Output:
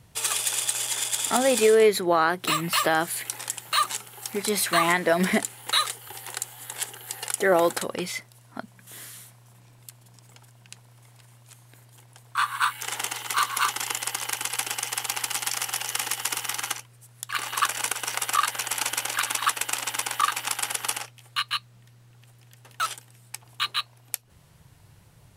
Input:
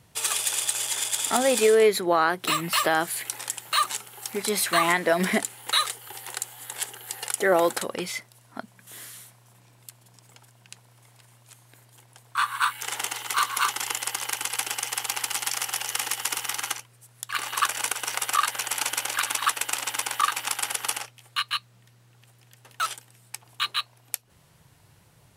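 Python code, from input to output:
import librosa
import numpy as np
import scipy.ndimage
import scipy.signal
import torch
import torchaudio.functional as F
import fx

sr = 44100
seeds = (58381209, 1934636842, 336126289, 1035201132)

y = fx.low_shelf(x, sr, hz=110.0, db=9.0)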